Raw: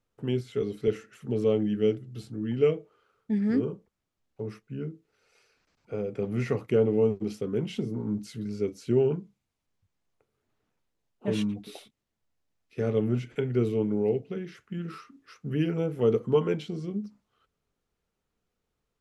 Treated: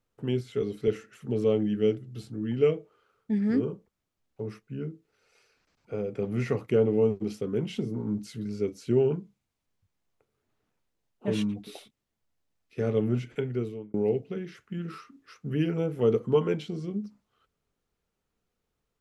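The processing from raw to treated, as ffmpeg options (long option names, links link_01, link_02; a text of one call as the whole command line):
ffmpeg -i in.wav -filter_complex "[0:a]asplit=2[link_01][link_02];[link_01]atrim=end=13.94,asetpts=PTS-STARTPTS,afade=type=out:start_time=13.32:duration=0.62[link_03];[link_02]atrim=start=13.94,asetpts=PTS-STARTPTS,afade=type=in:duration=0.004:curve=hsin[link_04];[link_03][link_04]concat=n=2:v=0:a=1" out.wav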